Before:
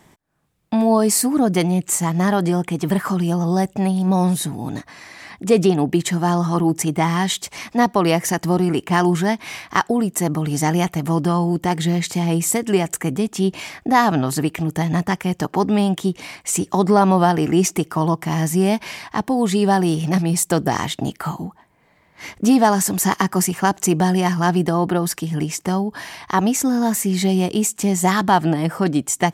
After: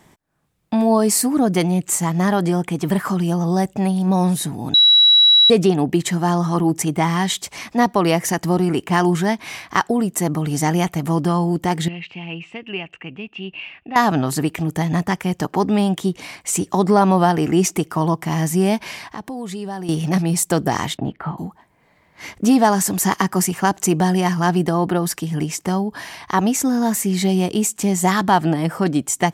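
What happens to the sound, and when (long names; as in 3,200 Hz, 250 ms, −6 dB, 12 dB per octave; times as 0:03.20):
0:04.74–0:05.50: beep over 3,900 Hz −8 dBFS
0:11.88–0:13.96: transistor ladder low-pass 2,800 Hz, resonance 90%
0:19.07–0:19.89: downward compressor 2.5 to 1, threshold −31 dBFS
0:20.97–0:21.38: high-frequency loss of the air 480 metres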